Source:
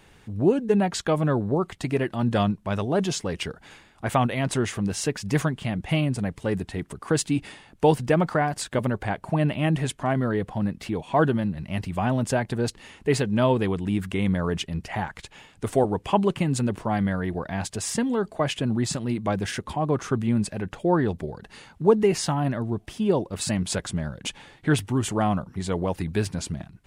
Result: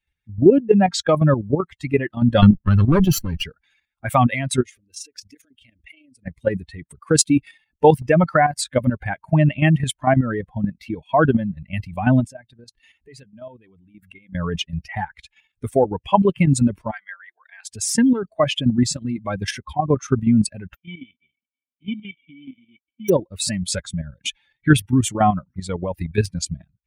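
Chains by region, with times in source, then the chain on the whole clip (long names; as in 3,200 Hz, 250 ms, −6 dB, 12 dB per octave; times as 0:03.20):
0:02.42–0:03.43: lower of the sound and its delayed copy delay 0.68 ms + low-shelf EQ 430 Hz +7.5 dB
0:04.62–0:06.26: downward compressor 8 to 1, threshold −30 dBFS + amplitude modulation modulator 28 Hz, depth 35% + phaser with its sweep stopped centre 380 Hz, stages 4
0:12.27–0:14.35: downward compressor 2.5 to 1, threshold −40 dBFS + parametric band 650 Hz +4 dB 0.22 octaves + mains-hum notches 50/100/150/200 Hz
0:16.91–0:17.67: high-pass filter 1,400 Hz + high-shelf EQ 2,700 Hz −5 dB
0:20.74–0:23.08: spectral envelope flattened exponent 0.1 + formant resonators in series i
whole clip: spectral dynamics exaggerated over time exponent 2; output level in coarse steps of 10 dB; boost into a limiter +17.5 dB; level −1 dB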